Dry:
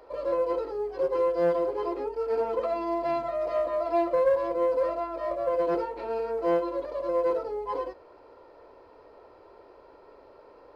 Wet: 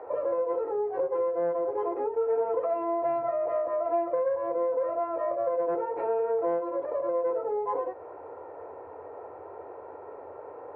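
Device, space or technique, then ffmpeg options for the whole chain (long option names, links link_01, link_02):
bass amplifier: -af "acompressor=threshold=-37dB:ratio=4,highpass=frequency=87:width=0.5412,highpass=frequency=87:width=1.3066,equalizer=frequency=88:width_type=q:width=4:gain=7,equalizer=frequency=220:width_type=q:width=4:gain=-9,equalizer=frequency=460:width_type=q:width=4:gain=5,equalizer=frequency=770:width_type=q:width=4:gain=9,lowpass=frequency=2000:width=0.5412,lowpass=frequency=2000:width=1.3066,volume=6dB"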